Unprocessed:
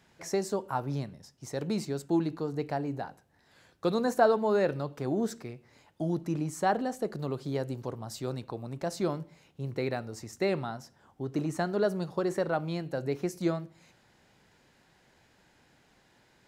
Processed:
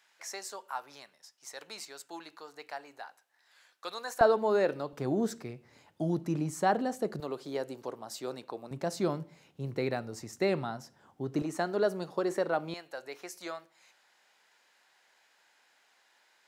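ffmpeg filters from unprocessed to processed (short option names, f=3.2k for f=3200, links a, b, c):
-af "asetnsamples=n=441:p=0,asendcmd='4.21 highpass f 260;4.93 highpass f 84;7.2 highpass f 340;8.71 highpass f 110;11.42 highpass f 260;12.74 highpass f 840',highpass=1.1k"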